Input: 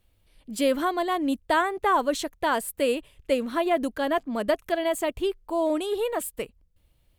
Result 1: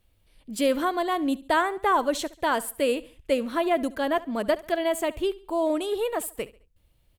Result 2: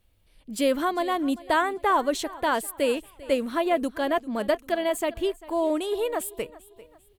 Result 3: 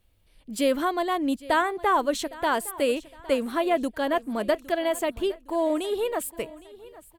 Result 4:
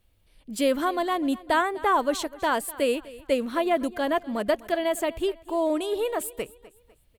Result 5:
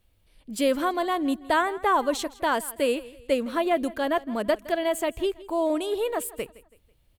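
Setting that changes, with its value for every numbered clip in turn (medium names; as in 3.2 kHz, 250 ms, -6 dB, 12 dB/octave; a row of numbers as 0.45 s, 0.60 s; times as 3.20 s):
feedback delay, time: 70 ms, 395 ms, 811 ms, 250 ms, 164 ms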